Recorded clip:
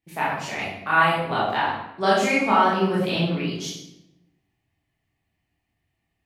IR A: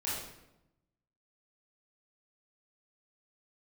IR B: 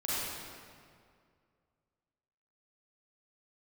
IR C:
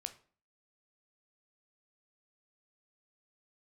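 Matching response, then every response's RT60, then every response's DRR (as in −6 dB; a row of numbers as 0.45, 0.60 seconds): A; 0.90, 2.2, 0.45 seconds; −9.0, −9.5, 8.5 decibels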